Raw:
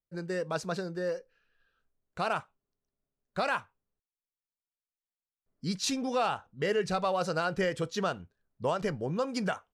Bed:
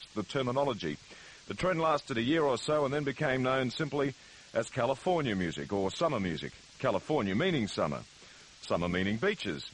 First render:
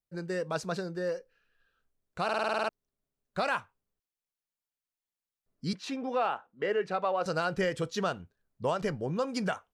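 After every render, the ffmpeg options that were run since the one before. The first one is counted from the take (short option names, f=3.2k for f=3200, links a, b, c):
-filter_complex "[0:a]asettb=1/sr,asplit=3[a][b][c];[a]atrim=end=5.734[d];[b]atrim=start=5.73:end=7.26,asetpts=PTS-STARTPTS,afade=t=in:d=0.004:c=qsin,afade=t=out:st=1.526:d=0.004:c=qsin,acrossover=split=220 3000:gain=0.0794 1 0.141[e][f][g];[e][f][g]amix=inputs=3:normalize=0[h];[c]atrim=start=7.256[i];[d][h]acrossfade=d=0.004:c1=hsin:c2=qsin[j];[j][i]acrossfade=d=0.004:c1=qsin:c2=hsin,asplit=10[k][l][m][n][o][p][q][r][s][t];[k]atrim=end=2.292[u];[l]atrim=start=2.238:end=2.292[v];[m]atrim=start=2.238:end=2.292[w];[n]atrim=start=2.238:end=2.292[x];[o]atrim=start=2.238:end=2.292[y];[p]atrim=start=2.238:end=2.292[z];[q]atrim=start=2.238:end=2.292[aa];[r]atrim=start=2.238:end=2.292[ab];[s]atrim=start=2.238:end=2.292[ac];[t]atrim=start=2.688[ad];[u][v]acrossfade=d=0.004:c1=hsin:c2=hsin[ae];[ae][w]acrossfade=d=0.004:c1=hsin:c2=hsin[af];[af][x]acrossfade=d=0.004:c1=hsin:c2=hsin[ag];[ag][y]acrossfade=d=0.004:c1=hsin:c2=hsin[ah];[ah][z]acrossfade=d=0.004:c1=hsin:c2=hsin[ai];[ai][aa]acrossfade=d=0.004:c1=hsin:c2=hsin[aj];[aj][ab]acrossfade=d=0.004:c1=hsin:c2=hsin[ak];[ak][ac]acrossfade=d=0.004:c1=hsin:c2=hsin[al];[al][ad]acrossfade=d=0.004:c1=hsin:c2=hsin"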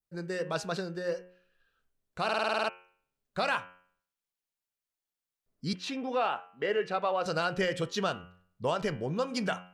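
-af "bandreject=f=90.4:t=h:w=4,bandreject=f=180.8:t=h:w=4,bandreject=f=271.2:t=h:w=4,bandreject=f=361.6:t=h:w=4,bandreject=f=452:t=h:w=4,bandreject=f=542.4:t=h:w=4,bandreject=f=632.8:t=h:w=4,bandreject=f=723.2:t=h:w=4,bandreject=f=813.6:t=h:w=4,bandreject=f=904:t=h:w=4,bandreject=f=994.4:t=h:w=4,bandreject=f=1.0848k:t=h:w=4,bandreject=f=1.1752k:t=h:w=4,bandreject=f=1.2656k:t=h:w=4,bandreject=f=1.356k:t=h:w=4,bandreject=f=1.4464k:t=h:w=4,bandreject=f=1.5368k:t=h:w=4,bandreject=f=1.6272k:t=h:w=4,bandreject=f=1.7176k:t=h:w=4,bandreject=f=1.808k:t=h:w=4,bandreject=f=1.8984k:t=h:w=4,bandreject=f=1.9888k:t=h:w=4,bandreject=f=2.0792k:t=h:w=4,bandreject=f=2.1696k:t=h:w=4,bandreject=f=2.26k:t=h:w=4,bandreject=f=2.3504k:t=h:w=4,bandreject=f=2.4408k:t=h:w=4,bandreject=f=2.5312k:t=h:w=4,bandreject=f=2.6216k:t=h:w=4,bandreject=f=2.712k:t=h:w=4,bandreject=f=2.8024k:t=h:w=4,bandreject=f=2.8928k:t=h:w=4,bandreject=f=2.9832k:t=h:w=4,bandreject=f=3.0736k:t=h:w=4,bandreject=f=3.164k:t=h:w=4,adynamicequalizer=threshold=0.00355:dfrequency=3200:dqfactor=1.2:tfrequency=3200:tqfactor=1.2:attack=5:release=100:ratio=0.375:range=2.5:mode=boostabove:tftype=bell"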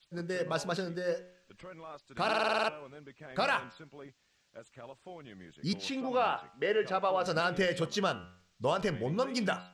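-filter_complex "[1:a]volume=-18.5dB[a];[0:a][a]amix=inputs=2:normalize=0"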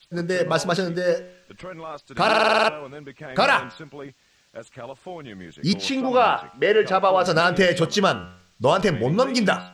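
-af "volume=11.5dB"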